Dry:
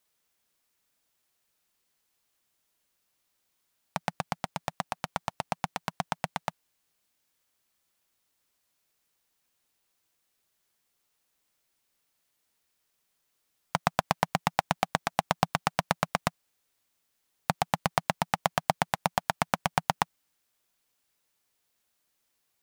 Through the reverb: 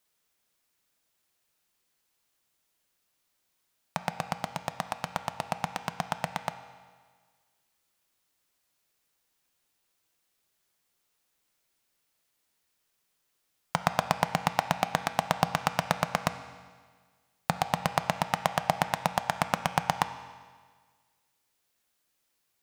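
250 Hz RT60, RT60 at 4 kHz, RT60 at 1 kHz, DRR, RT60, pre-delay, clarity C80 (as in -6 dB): 1.6 s, 1.5 s, 1.6 s, 9.0 dB, 1.6 s, 4 ms, 12.0 dB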